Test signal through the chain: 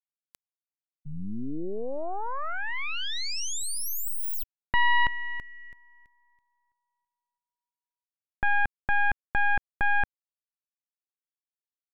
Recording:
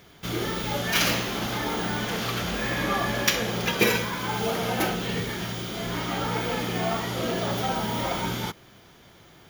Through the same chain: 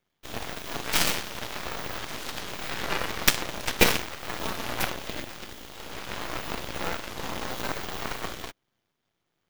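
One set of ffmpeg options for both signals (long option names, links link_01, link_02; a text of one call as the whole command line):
ffmpeg -i in.wav -af "highpass=72,aeval=exprs='0.668*(cos(1*acos(clip(val(0)/0.668,-1,1)))-cos(1*PI/2))+0.0075*(cos(3*acos(clip(val(0)/0.668,-1,1)))-cos(3*PI/2))+0.0944*(cos(7*acos(clip(val(0)/0.668,-1,1)))-cos(7*PI/2))+0.075*(cos(8*acos(clip(val(0)/0.668,-1,1)))-cos(8*PI/2))':channel_layout=same,volume=4dB" out.wav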